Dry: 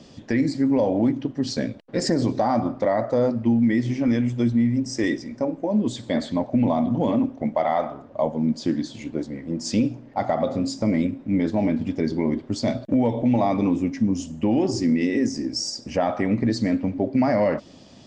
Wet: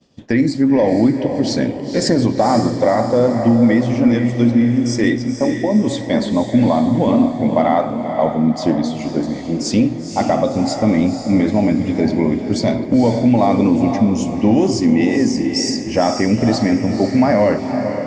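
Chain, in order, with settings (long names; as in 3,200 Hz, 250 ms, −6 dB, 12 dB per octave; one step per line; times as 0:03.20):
downward expander −36 dBFS
on a send: feedback delay with all-pass diffusion 499 ms, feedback 46%, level −7 dB
on the sum: level +6.5 dB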